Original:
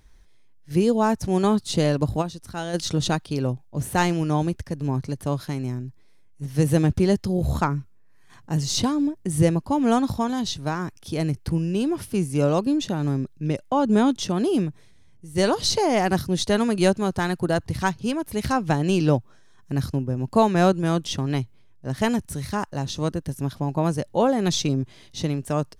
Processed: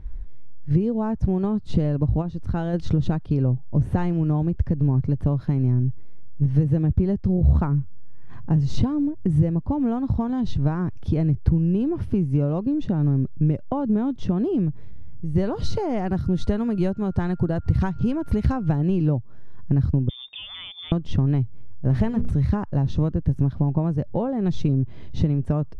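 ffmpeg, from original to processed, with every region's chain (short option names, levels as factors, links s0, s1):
-filter_complex "[0:a]asettb=1/sr,asplit=3[s0][s1][s2];[s0]atrim=end=15.554[s3];[s1]atrim=start=15.55:end=18.81,asetpts=PTS-STARTPTS,afade=t=in:d=0.004:c=qsin,afade=t=out:st=3.256:d=0.004:c=qsin,highshelf=f=4300:g=7,acompressor=mode=upward:threshold=0.0708:ratio=2.5:attack=3.2:release=140:knee=2.83:detection=peak,aeval=exprs='val(0)+0.00501*sin(2*PI*1400*n/s)':c=same[s4];[s2]atrim=start=18.806[s5];[s3][s4]acrossfade=d=0.004:c1=hsin:c2=qsin[s6];[s6][s5]acrossfade=d=0.004:c1=qsin:c2=hsin,asettb=1/sr,asplit=3[s7][s8][s9];[s7]atrim=end=20.094[s10];[s8]atrim=start=20.09:end=20.92,asetpts=PTS-STARTPTS,afade=t=in:d=0.004:c=qsin,afade=t=out:st=0.826:d=0.004:c=qsin,acompressor=threshold=0.0447:ratio=5:attack=3.2:release=140:knee=1:detection=peak,lowpass=f=3100:t=q:w=0.5098,lowpass=f=3100:t=q:w=0.6013,lowpass=f=3100:t=q:w=0.9,lowpass=f=3100:t=q:w=2.563,afreqshift=-3700[s11];[s9]atrim=start=20.916[s12];[s10][s11]acrossfade=d=0.004:c1=hsin:c2=qsin[s13];[s13][s12]acrossfade=d=0.004:c1=qsin:c2=hsin,asettb=1/sr,asplit=3[s14][s15][s16];[s14]atrim=end=21.904[s17];[s15]atrim=start=21.9:end=22.31,asetpts=PTS-STARTPTS,afade=t=in:d=0.004:c=qsin,afade=t=out:st=0.406:d=0.004:c=qsin,aeval=exprs='val(0)+0.5*0.0376*sgn(val(0))':c=same,bandreject=f=60:t=h:w=6,bandreject=f=120:t=h:w=6,bandreject=f=180:t=h:w=6,bandreject=f=240:t=h:w=6,bandreject=f=300:t=h:w=6,bandreject=f=360:t=h:w=6,bandreject=f=420:t=h:w=6,bandreject=f=480:t=h:w=6[s18];[s16]atrim=start=22.306[s19];[s17][s18]acrossfade=d=0.004:c1=hsin:c2=qsin[s20];[s20][s19]acrossfade=d=0.004:c1=qsin:c2=hsin,highshelf=f=4000:g=-12,acompressor=threshold=0.0316:ratio=6,aemphasis=mode=reproduction:type=riaa,volume=1.5"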